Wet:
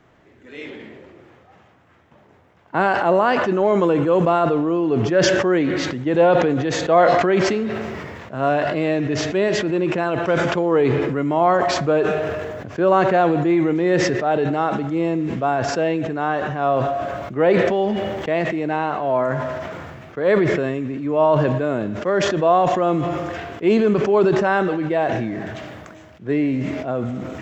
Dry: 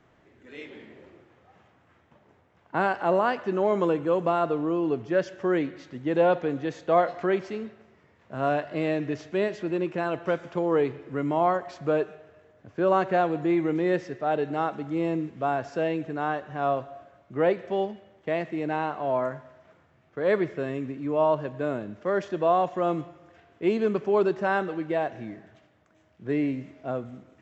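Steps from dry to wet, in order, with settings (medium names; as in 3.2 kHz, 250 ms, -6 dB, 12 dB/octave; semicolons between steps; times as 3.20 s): decay stretcher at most 25 dB/s; trim +6 dB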